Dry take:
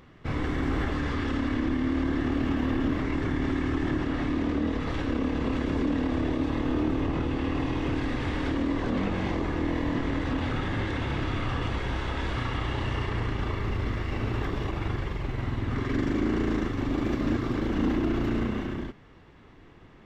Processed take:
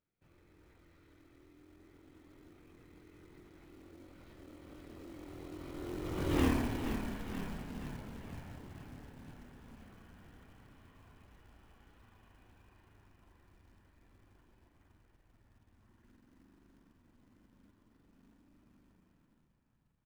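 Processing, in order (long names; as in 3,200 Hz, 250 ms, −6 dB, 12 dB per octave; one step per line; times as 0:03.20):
source passing by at 0:06.43, 47 m/s, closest 4.2 metres
echo with shifted repeats 477 ms, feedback 63%, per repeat −39 Hz, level −8.5 dB
floating-point word with a short mantissa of 2 bits
level +1 dB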